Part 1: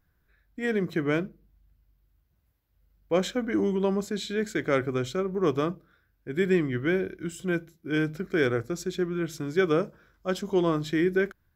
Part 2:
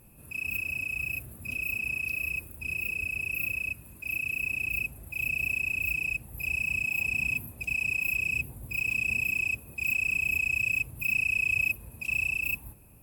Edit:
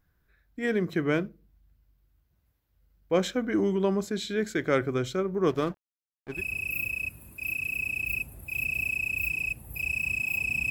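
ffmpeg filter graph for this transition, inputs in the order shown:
-filter_complex "[0:a]asettb=1/sr,asplit=3[s0][s1][s2];[s0]atrim=end=5.484[s3];[s1]atrim=start=5.48:end=6.42,asetpts=PTS-STARTPTS,afade=t=in:d=0.004:c=qsin,afade=t=out:st=0.936:d=0.004:c=qsin,aeval=exprs='sgn(val(0))*max(abs(val(0))-0.00891,0)':c=same[s4];[s2]atrim=start=6.416[s5];[s3][s4]acrossfade=d=0.004:c1=hsin:c2=qsin[s6];[s6][s5]acrossfade=d=0.004:c1=qsin:c2=hsin,apad=whole_dur=10.7,atrim=end=10.7,atrim=end=6.42,asetpts=PTS-STARTPTS[s7];[1:a]atrim=start=2.94:end=7.34,asetpts=PTS-STARTPTS[s8];[s7][s8]acrossfade=d=0.12:c1=tri:c2=tri"

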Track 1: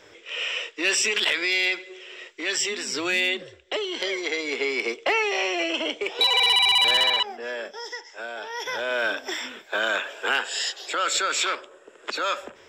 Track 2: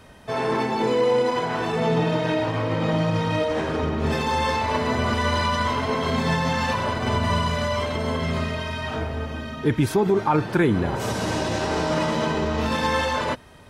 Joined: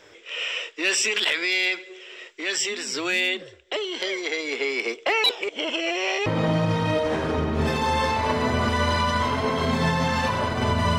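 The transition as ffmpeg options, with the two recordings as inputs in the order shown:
-filter_complex "[0:a]apad=whole_dur=10.98,atrim=end=10.98,asplit=2[s0][s1];[s0]atrim=end=5.242[s2];[s1]atrim=start=5.238:end=6.262,asetpts=PTS-STARTPTS,areverse[s3];[1:a]atrim=start=2.708:end=7.43[s4];[s2][s3]acrossfade=d=0.004:c1=hsin:c2=hsin[s5];[s5][s4]acrossfade=d=0.004:c1=hsin:c2=hsin"

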